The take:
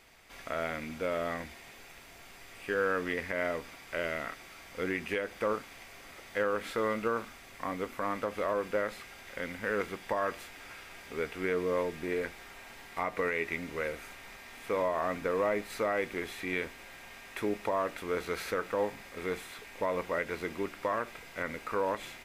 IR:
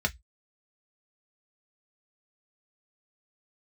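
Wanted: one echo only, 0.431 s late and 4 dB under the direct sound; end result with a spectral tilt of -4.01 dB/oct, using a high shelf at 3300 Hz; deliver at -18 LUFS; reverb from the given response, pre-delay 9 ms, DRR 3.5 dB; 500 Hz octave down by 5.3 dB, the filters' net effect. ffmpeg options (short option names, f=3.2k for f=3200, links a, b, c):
-filter_complex "[0:a]equalizer=f=500:t=o:g=-6,highshelf=f=3.3k:g=-8,aecho=1:1:431:0.631,asplit=2[a][b];[1:a]atrim=start_sample=2205,adelay=9[c];[b][c]afir=irnorm=-1:irlink=0,volume=-12dB[d];[a][d]amix=inputs=2:normalize=0,volume=17.5dB"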